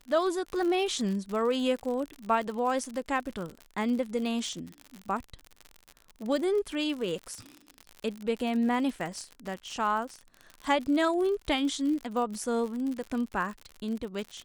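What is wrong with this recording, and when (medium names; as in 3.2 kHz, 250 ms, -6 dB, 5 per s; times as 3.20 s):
crackle 68 per s -34 dBFS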